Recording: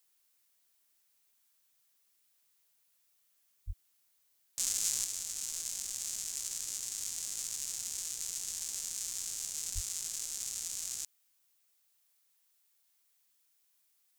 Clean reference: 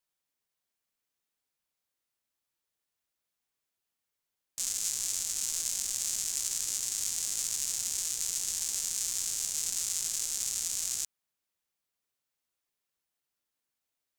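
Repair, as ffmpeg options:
ffmpeg -i in.wav -filter_complex "[0:a]asplit=3[link_01][link_02][link_03];[link_01]afade=type=out:start_time=3.66:duration=0.02[link_04];[link_02]highpass=frequency=140:width=0.5412,highpass=frequency=140:width=1.3066,afade=type=in:start_time=3.66:duration=0.02,afade=type=out:start_time=3.78:duration=0.02[link_05];[link_03]afade=type=in:start_time=3.78:duration=0.02[link_06];[link_04][link_05][link_06]amix=inputs=3:normalize=0,asplit=3[link_07][link_08][link_09];[link_07]afade=type=out:start_time=9.74:duration=0.02[link_10];[link_08]highpass=frequency=140:width=0.5412,highpass=frequency=140:width=1.3066,afade=type=in:start_time=9.74:duration=0.02,afade=type=out:start_time=9.86:duration=0.02[link_11];[link_09]afade=type=in:start_time=9.86:duration=0.02[link_12];[link_10][link_11][link_12]amix=inputs=3:normalize=0,agate=range=-21dB:threshold=-65dB,asetnsamples=nb_out_samples=441:pad=0,asendcmd='5.04 volume volume 6dB',volume=0dB" out.wav

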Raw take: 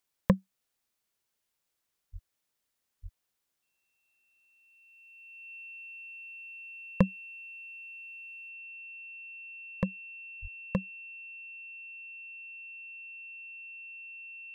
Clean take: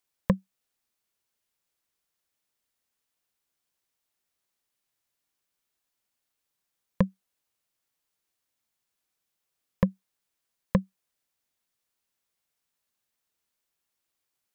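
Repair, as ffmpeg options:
ffmpeg -i in.wav -filter_complex "[0:a]bandreject=frequency=2700:width=30,asplit=3[link_01][link_02][link_03];[link_01]afade=type=out:start_time=2.12:duration=0.02[link_04];[link_02]highpass=frequency=140:width=0.5412,highpass=frequency=140:width=1.3066,afade=type=in:start_time=2.12:duration=0.02,afade=type=out:start_time=2.24:duration=0.02[link_05];[link_03]afade=type=in:start_time=2.24:duration=0.02[link_06];[link_04][link_05][link_06]amix=inputs=3:normalize=0,asplit=3[link_07][link_08][link_09];[link_07]afade=type=out:start_time=3.02:duration=0.02[link_10];[link_08]highpass=frequency=140:width=0.5412,highpass=frequency=140:width=1.3066,afade=type=in:start_time=3.02:duration=0.02,afade=type=out:start_time=3.14:duration=0.02[link_11];[link_09]afade=type=in:start_time=3.14:duration=0.02[link_12];[link_10][link_11][link_12]amix=inputs=3:normalize=0,asplit=3[link_13][link_14][link_15];[link_13]afade=type=out:start_time=10.41:duration=0.02[link_16];[link_14]highpass=frequency=140:width=0.5412,highpass=frequency=140:width=1.3066,afade=type=in:start_time=10.41:duration=0.02,afade=type=out:start_time=10.53:duration=0.02[link_17];[link_15]afade=type=in:start_time=10.53:duration=0.02[link_18];[link_16][link_17][link_18]amix=inputs=3:normalize=0,asetnsamples=nb_out_samples=441:pad=0,asendcmd='8.49 volume volume 6.5dB',volume=0dB" out.wav

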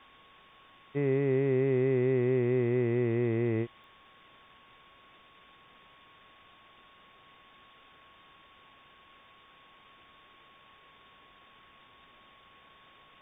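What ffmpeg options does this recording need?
ffmpeg -i in.wav -af "adeclick=threshold=4,bandreject=frequency=1100:width=30,afwtdn=0.0025" out.wav

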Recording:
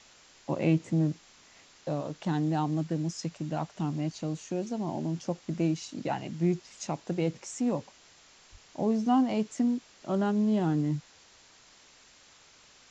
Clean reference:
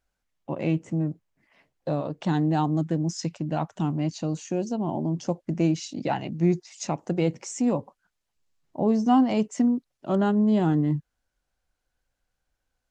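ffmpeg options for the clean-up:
ffmpeg -i in.wav -filter_complex "[0:a]asplit=3[link_01][link_02][link_03];[link_01]afade=type=out:start_time=8.51:duration=0.02[link_04];[link_02]highpass=frequency=140:width=0.5412,highpass=frequency=140:width=1.3066,afade=type=in:start_time=8.51:duration=0.02,afade=type=out:start_time=8.63:duration=0.02[link_05];[link_03]afade=type=in:start_time=8.63:duration=0.02[link_06];[link_04][link_05][link_06]amix=inputs=3:normalize=0,afwtdn=0.0022,asetnsamples=nb_out_samples=441:pad=0,asendcmd='1.71 volume volume 5dB',volume=0dB" out.wav

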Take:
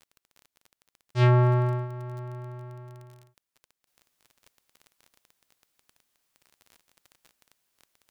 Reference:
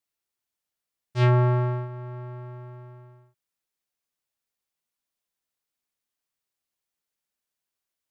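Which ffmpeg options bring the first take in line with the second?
ffmpeg -i in.wav -af "adeclick=threshold=4,asetnsamples=nb_out_samples=441:pad=0,asendcmd='3.87 volume volume -11dB',volume=0dB" out.wav

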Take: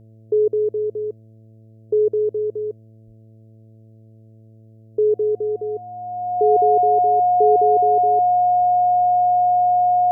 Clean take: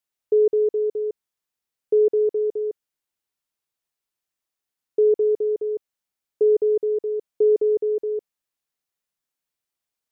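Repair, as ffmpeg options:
ffmpeg -i in.wav -filter_complex "[0:a]bandreject=frequency=110.6:width_type=h:width=4,bandreject=frequency=221.2:width_type=h:width=4,bandreject=frequency=331.8:width_type=h:width=4,bandreject=frequency=442.4:width_type=h:width=4,bandreject=frequency=553:width_type=h:width=4,bandreject=frequency=663.6:width_type=h:width=4,bandreject=frequency=720:width=30,asplit=3[link_01][link_02][link_03];[link_01]afade=type=out:start_time=3.06:duration=0.02[link_04];[link_02]highpass=frequency=140:width=0.5412,highpass=frequency=140:width=1.3066,afade=type=in:start_time=3.06:duration=0.02,afade=type=out:start_time=3.18:duration=0.02[link_05];[link_03]afade=type=in:start_time=3.18:duration=0.02[link_06];[link_04][link_05][link_06]amix=inputs=3:normalize=0,asplit=3[link_07][link_08][link_09];[link_07]afade=type=out:start_time=8.59:duration=0.02[link_10];[link_08]highpass=frequency=140:width=0.5412,highpass=frequency=140:width=1.3066,afade=type=in:start_time=8.59:duration=0.02,afade=type=out:start_time=8.71:duration=0.02[link_11];[link_09]afade=type=in:start_time=8.71:duration=0.02[link_12];[link_10][link_11][link_12]amix=inputs=3:normalize=0,asplit=3[link_13][link_14][link_15];[link_13]afade=type=out:start_time=8.99:duration=0.02[link_16];[link_14]highpass=frequency=140:width=0.5412,highpass=frequency=140:width=1.3066,afade=type=in:start_time=8.99:duration=0.02,afade=type=out:start_time=9.11:duration=0.02[link_17];[link_15]afade=type=in:start_time=9.11:duration=0.02[link_18];[link_16][link_17][link_18]amix=inputs=3:normalize=0" out.wav

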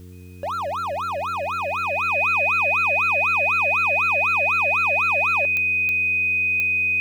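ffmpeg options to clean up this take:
ffmpeg -i in.wav -af "adeclick=threshold=4,bandreject=frequency=90.4:width_type=h:width=4,bandreject=frequency=180.8:width_type=h:width=4,bandreject=frequency=271.2:width_type=h:width=4,bandreject=frequency=361.6:width_type=h:width=4,bandreject=frequency=452:width_type=h:width=4,bandreject=frequency=2500:width=30,agate=range=-21dB:threshold=-18dB" out.wav

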